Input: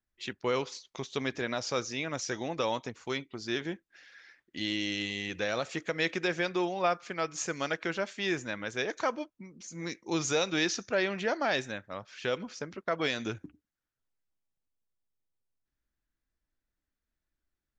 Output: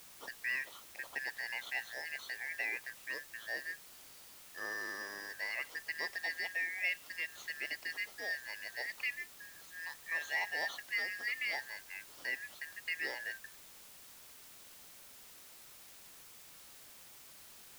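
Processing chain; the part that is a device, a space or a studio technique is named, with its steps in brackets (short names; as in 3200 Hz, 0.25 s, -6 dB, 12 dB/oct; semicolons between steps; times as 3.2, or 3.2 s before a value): split-band scrambled radio (four-band scrambler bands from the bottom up 3142; BPF 380–3100 Hz; white noise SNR 13 dB); gain -6.5 dB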